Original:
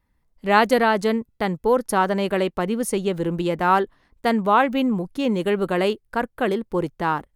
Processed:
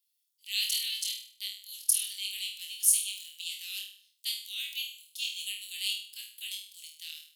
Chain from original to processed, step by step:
Butterworth high-pass 2,900 Hz 48 dB per octave
high-shelf EQ 7,400 Hz +9.5 dB
flutter between parallel walls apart 4.3 metres, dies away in 0.49 s

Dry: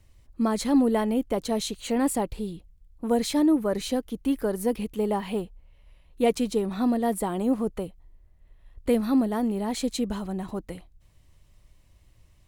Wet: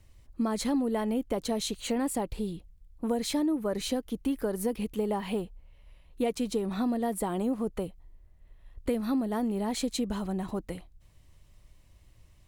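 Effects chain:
downward compressor 4 to 1, threshold −26 dBFS, peak gain reduction 8.5 dB

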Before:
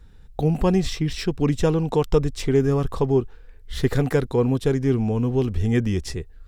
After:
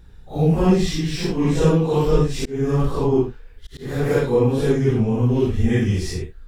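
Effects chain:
random phases in long frames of 200 ms
0:02.36–0:04.12: volume swells 296 ms
level +3 dB

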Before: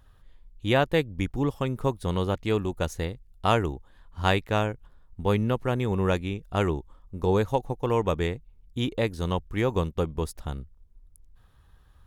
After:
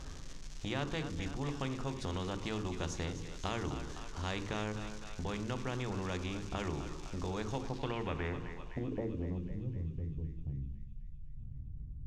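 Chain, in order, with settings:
spectral tilt −3 dB per octave
reversed playback
upward compression, threshold −30 dBFS
reversed playback
brickwall limiter −11.5 dBFS, peak gain reduction 7 dB
downward compressor 4 to 1, threshold −28 dBFS, peak gain reduction 11 dB
surface crackle 340 per second −49 dBFS
low-pass filter sweep 6,300 Hz → 120 Hz, 0:07.61–0:09.65
feedback echo with a high-pass in the loop 255 ms, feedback 76%, high-pass 1,100 Hz, level −13 dB
on a send at −12 dB: convolution reverb, pre-delay 3 ms
on the sum: every bin compressed towards the loudest bin 2 to 1
level −6.5 dB

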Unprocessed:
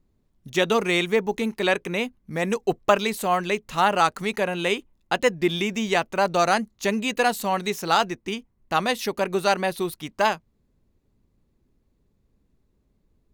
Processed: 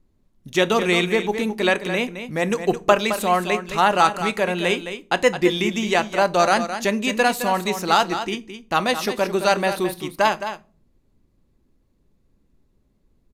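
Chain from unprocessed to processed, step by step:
single-tap delay 215 ms −10 dB
on a send at −13 dB: convolution reverb, pre-delay 3 ms
on the sum: downsampling to 32,000 Hz
level +2.5 dB

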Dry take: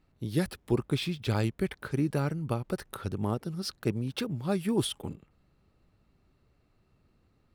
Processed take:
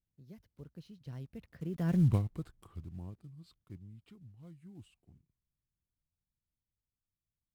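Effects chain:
one scale factor per block 5 bits
source passing by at 0:02.02, 56 m/s, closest 3 metres
bass and treble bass +13 dB, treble −2 dB

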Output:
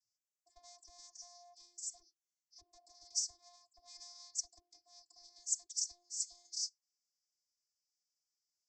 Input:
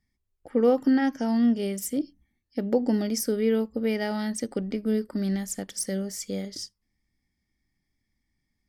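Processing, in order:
tube saturation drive 29 dB, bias 0.6
channel vocoder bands 32, saw 351 Hz
dynamic equaliser 400 Hz, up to +5 dB, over −40 dBFS, Q 1.2
downward compressor 2.5 to 1, threshold −35 dBFS, peak gain reduction 11 dB
inverse Chebyshev band-stop filter 170–3,100 Hz, stop band 40 dB
level +14 dB

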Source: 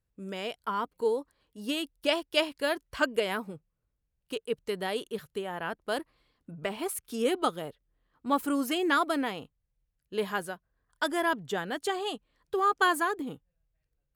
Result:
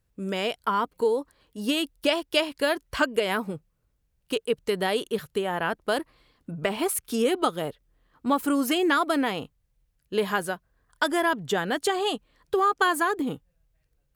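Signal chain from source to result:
downward compressor 2.5 to 1, threshold −30 dBFS, peak gain reduction 7.5 dB
level +8.5 dB

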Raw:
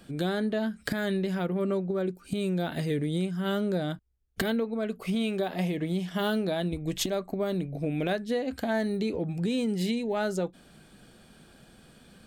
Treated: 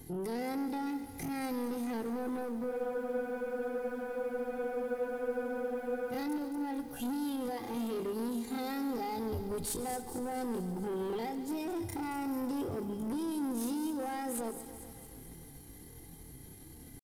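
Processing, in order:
pitch vibrato 7.5 Hz 11 cents
comb filter 3.2 ms, depth 77%
brickwall limiter −22.5 dBFS, peak gain reduction 10 dB
graphic EQ with 10 bands 125 Hz +10 dB, 250 Hz −6 dB, 500 Hz −8 dB, 1,000 Hz −9 dB, 2,000 Hz −10 dB, 4,000 Hz −11 dB, 8,000 Hz +6 dB
pitch shifter +10 semitones
soft clipping −37 dBFS, distortion −11 dB
speed change −28%
delay with a high-pass on its return 223 ms, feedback 56%, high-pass 4,700 Hz, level −8 dB
frozen spectrum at 0:02.72, 3.41 s
feedback echo at a low word length 141 ms, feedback 80%, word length 10 bits, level −14 dB
level +4.5 dB

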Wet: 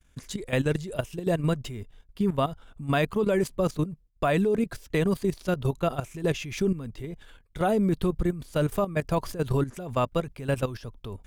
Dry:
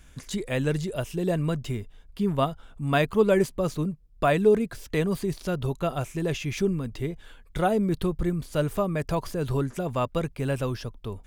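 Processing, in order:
downward expander −43 dBFS
output level in coarse steps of 13 dB
level +3.5 dB

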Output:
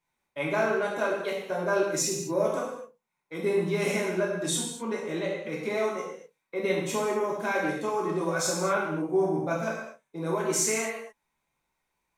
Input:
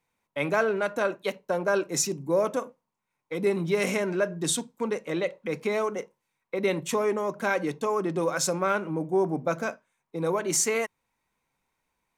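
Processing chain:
reverb whose tail is shaped and stops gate 280 ms falling, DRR −5 dB
level −7 dB

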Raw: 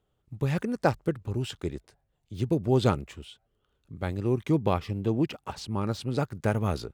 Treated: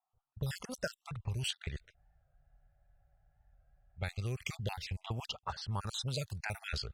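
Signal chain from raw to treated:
time-frequency cells dropped at random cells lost 38%
low-pass that shuts in the quiet parts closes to 720 Hz, open at −27 dBFS
guitar amp tone stack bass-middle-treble 10-0-10
downward compressor 5 to 1, threshold −47 dBFS, peak gain reduction 13 dB
auto-filter notch sine 0.4 Hz 920–2,400 Hz
frozen spectrum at 0:01.98, 2.01 s
wow of a warped record 45 rpm, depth 100 cents
level +13.5 dB

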